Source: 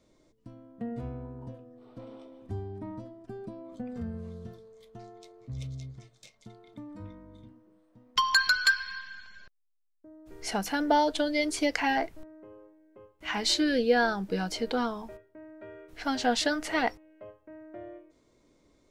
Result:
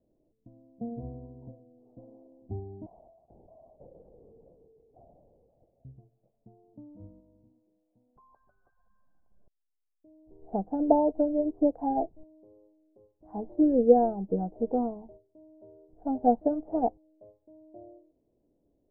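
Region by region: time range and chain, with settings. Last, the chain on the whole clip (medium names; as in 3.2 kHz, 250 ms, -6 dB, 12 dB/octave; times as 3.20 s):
2.86–5.85 s: steep high-pass 420 Hz 96 dB/octave + LPC vocoder at 8 kHz whisper
7.20–9.32 s: bass shelf 480 Hz -6.5 dB + compression 2:1, threshold -38 dBFS
whole clip: elliptic low-pass 760 Hz, stop band 70 dB; upward expansion 1.5:1, over -46 dBFS; trim +7 dB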